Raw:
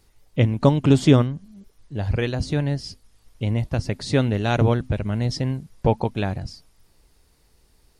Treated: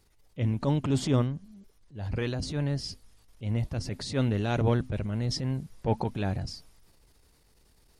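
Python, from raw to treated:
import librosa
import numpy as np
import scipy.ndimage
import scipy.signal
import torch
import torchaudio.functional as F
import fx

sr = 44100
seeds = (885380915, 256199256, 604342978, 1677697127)

y = fx.rider(x, sr, range_db=3, speed_s=2.0)
y = fx.transient(y, sr, attack_db=-10, sustain_db=4)
y = y * 10.0 ** (-6.0 / 20.0)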